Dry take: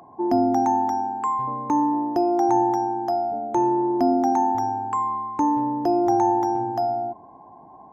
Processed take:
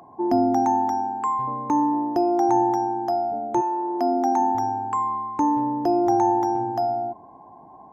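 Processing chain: 3.60–4.39 s: high-pass 730 Hz -> 210 Hz 12 dB/octave

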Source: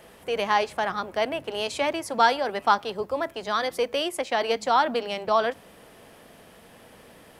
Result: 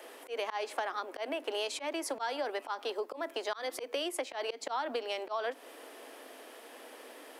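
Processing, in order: steep high-pass 260 Hz 72 dB/octave; slow attack 236 ms; compression 6:1, threshold -33 dBFS, peak gain reduction 10.5 dB; trim +1 dB

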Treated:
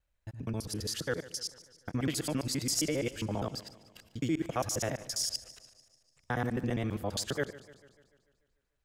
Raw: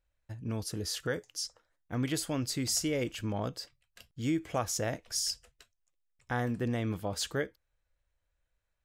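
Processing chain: time reversed locally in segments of 67 ms; modulated delay 147 ms, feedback 57%, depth 58 cents, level -18 dB

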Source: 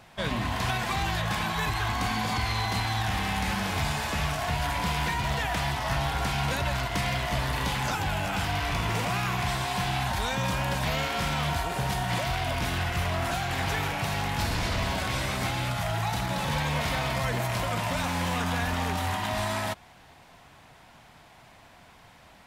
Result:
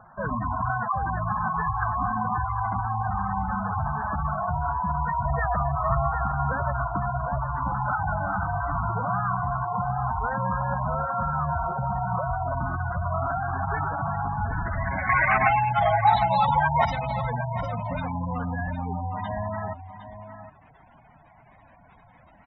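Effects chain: low-pass sweep 1.3 kHz -> 11 kHz, 14.36–17.79 s; spectral gate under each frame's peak -10 dB strong; 5.25–6.12 s: comb 1.7 ms, depth 81%; 15.09–16.85 s: high-order bell 1.1 kHz +15 dB; on a send: delay 760 ms -11.5 dB; on the sum: trim +1 dB

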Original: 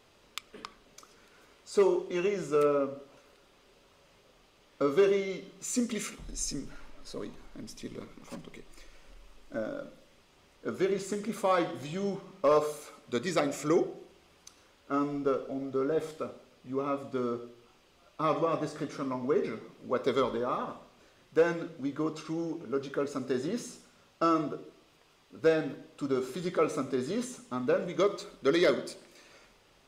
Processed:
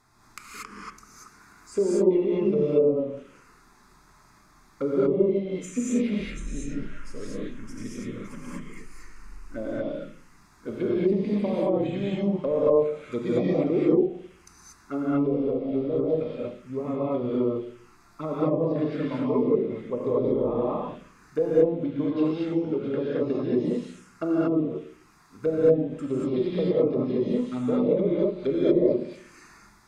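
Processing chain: low-pass that closes with the level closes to 500 Hz, closed at -24.5 dBFS; touch-sensitive phaser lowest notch 500 Hz, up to 1.5 kHz, full sweep at -30.5 dBFS; gated-style reverb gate 260 ms rising, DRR -6.5 dB; trim +2 dB

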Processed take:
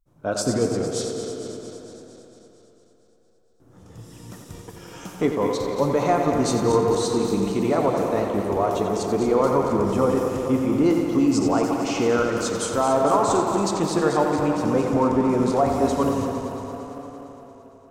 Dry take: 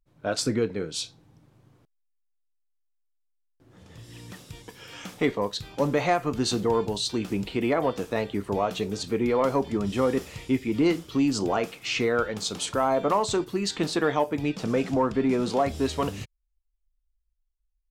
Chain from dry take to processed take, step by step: backward echo that repeats 114 ms, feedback 80%, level -8.5 dB; high-order bell 2.8 kHz -8.5 dB; tape echo 88 ms, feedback 87%, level -7 dB, low-pass 5.6 kHz; trim +2.5 dB

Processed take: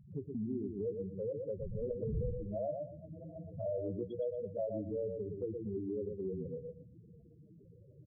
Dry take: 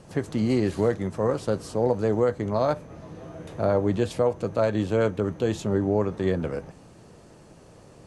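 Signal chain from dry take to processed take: 1.52–2.51 s: wind noise 200 Hz -21 dBFS; loudest bins only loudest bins 4; feedback delay 118 ms, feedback 17%, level -6 dB; compression 2:1, threshold -39 dBFS, peak gain reduction 13 dB; dynamic bell 820 Hz, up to +3 dB, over -50 dBFS, Q 1.7; trim -4 dB

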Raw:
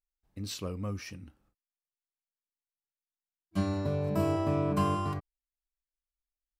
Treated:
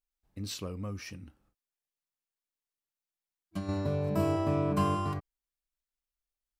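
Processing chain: 0.61–3.69 s: compression 6:1, threshold -33 dBFS, peak gain reduction 9 dB

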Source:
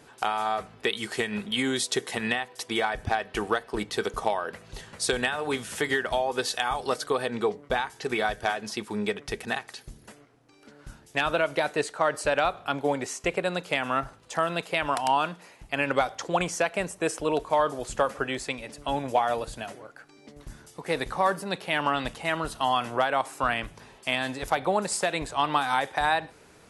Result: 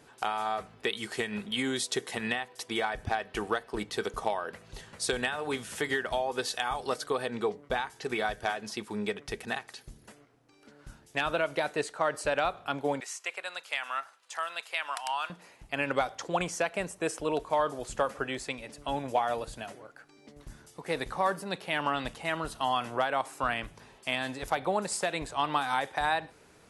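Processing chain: 13.00–15.30 s: high-pass 1.1 kHz 12 dB/octave; trim -4 dB

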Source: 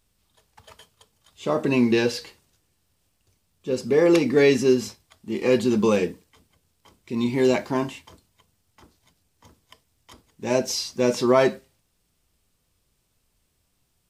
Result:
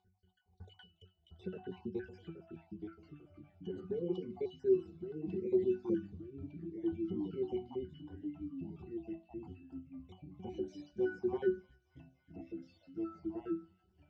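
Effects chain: random holes in the spectrogram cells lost 56%; low-pass 8.8 kHz; hum notches 50/100/150/200/250 Hz; gate -58 dBFS, range -29 dB; 6.02–7.12 s: tilt EQ -3.5 dB/octave; upward compressor, threshold -23 dBFS; pitch-class resonator F#, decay 0.2 s; feedback echo behind a high-pass 284 ms, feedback 70%, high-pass 2.3 kHz, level -17.5 dB; ever faster or slower copies 636 ms, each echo -2 st, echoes 3, each echo -6 dB; trim -1.5 dB

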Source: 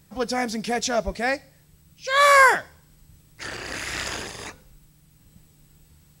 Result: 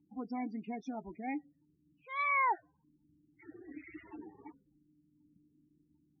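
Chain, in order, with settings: local Wiener filter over 9 samples; loudest bins only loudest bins 16; vowel filter u; trim +2 dB

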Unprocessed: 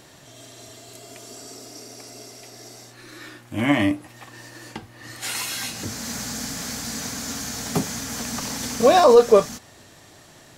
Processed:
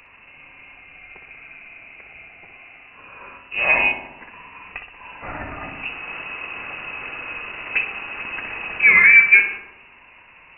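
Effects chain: frequency inversion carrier 2.8 kHz; filtered feedback delay 62 ms, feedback 70%, low-pass 1.9 kHz, level -6.5 dB; trim +1.5 dB

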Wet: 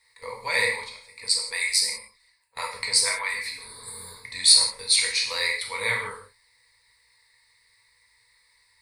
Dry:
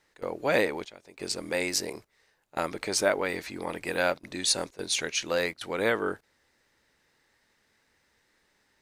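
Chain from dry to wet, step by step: 1.20–3.65 s: harmonic-percussive separation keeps percussive; amplifier tone stack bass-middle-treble 10-0-10; 3.63–4.16 s: spectral replace 240–6700 Hz before; rippled EQ curve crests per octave 0.94, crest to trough 17 dB; gated-style reverb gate 200 ms falling, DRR -1 dB; trim +3.5 dB

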